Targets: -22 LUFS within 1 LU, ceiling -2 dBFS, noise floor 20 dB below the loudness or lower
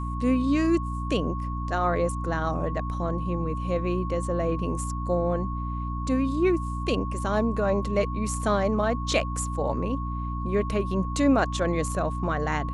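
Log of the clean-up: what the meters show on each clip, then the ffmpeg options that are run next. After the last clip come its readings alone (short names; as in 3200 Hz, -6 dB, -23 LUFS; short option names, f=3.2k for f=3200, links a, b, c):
hum 60 Hz; harmonics up to 300 Hz; hum level -28 dBFS; steady tone 1100 Hz; tone level -35 dBFS; loudness -26.5 LUFS; peak -10.0 dBFS; loudness target -22.0 LUFS
-> -af "bandreject=f=60:t=h:w=6,bandreject=f=120:t=h:w=6,bandreject=f=180:t=h:w=6,bandreject=f=240:t=h:w=6,bandreject=f=300:t=h:w=6"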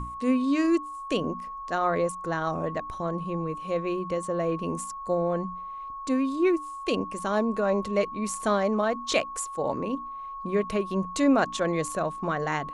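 hum none; steady tone 1100 Hz; tone level -35 dBFS
-> -af "bandreject=f=1.1k:w=30"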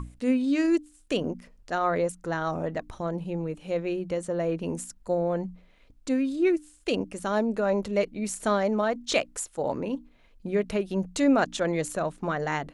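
steady tone none; loudness -28.0 LUFS; peak -11.0 dBFS; loudness target -22.0 LUFS
-> -af "volume=6dB"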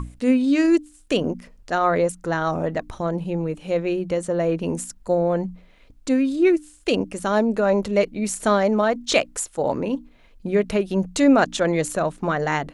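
loudness -22.0 LUFS; peak -5.0 dBFS; noise floor -52 dBFS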